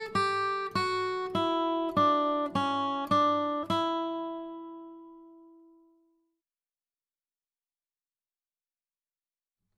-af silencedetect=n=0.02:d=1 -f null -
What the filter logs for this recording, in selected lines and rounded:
silence_start: 4.45
silence_end: 9.78 | silence_duration: 5.33